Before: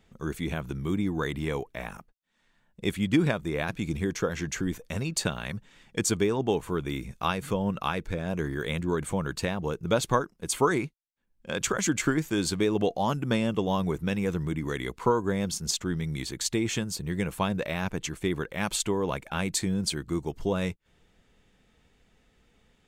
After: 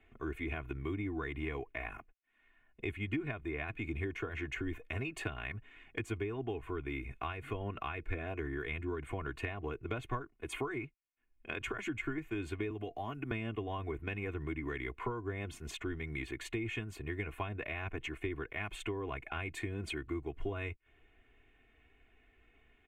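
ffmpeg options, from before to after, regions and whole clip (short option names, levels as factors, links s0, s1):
-filter_complex "[0:a]asettb=1/sr,asplit=3[s0][s1][s2];[s0]atrim=end=12.704[s3];[s1]atrim=start=12.7:end=13.31,asetpts=PTS-STARTPTS,afade=t=in:d=0.004:c=qsin,afade=t=out:st=0.606:d=0.004:c=qsin,highshelf=f=11000:g=10,acrossover=split=210|5300[s4][s5][s6];[s4]acompressor=threshold=0.0178:ratio=4[s7];[s5]acompressor=threshold=0.0251:ratio=4[s8];[s6]acompressor=threshold=0.00178:ratio=4[s9];[s7][s8][s9]amix=inputs=3:normalize=0[s10];[s2]atrim=start=13.306[s11];[s3][s10]acrossfade=d=0.004:c1=hsin:c2=qsin[s12];[s12][s11]acrossfade=d=0.004:c1=qsin:c2=hsin,highshelf=f=3500:t=q:w=3:g=-13,aecho=1:1:2.8:0.99,acrossover=split=150[s13][s14];[s14]acompressor=threshold=0.0316:ratio=6[s15];[s13][s15]amix=inputs=2:normalize=0,volume=0.473"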